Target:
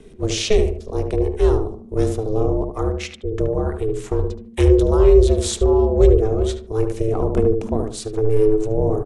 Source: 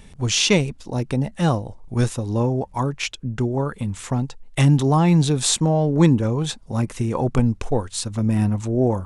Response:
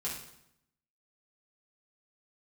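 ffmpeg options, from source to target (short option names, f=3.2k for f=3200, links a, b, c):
-filter_complex "[0:a]equalizer=f=200:t=o:w=1.1:g=14,acrossover=split=200|3000[a][b][c];[b]acompressor=threshold=-14dB:ratio=6[d];[a][d][c]amix=inputs=3:normalize=0,aeval=exprs='val(0)*sin(2*PI*220*n/s)':c=same,asplit=2[e][f];[f]adelay=74,lowpass=f=1.3k:p=1,volume=-4.5dB,asplit=2[g][h];[h]adelay=74,lowpass=f=1.3k:p=1,volume=0.34,asplit=2[i][j];[j]adelay=74,lowpass=f=1.3k:p=1,volume=0.34,asplit=2[k][l];[l]adelay=74,lowpass=f=1.3k:p=1,volume=0.34[m];[g][i][k][m]amix=inputs=4:normalize=0[n];[e][n]amix=inputs=2:normalize=0,volume=-2.5dB"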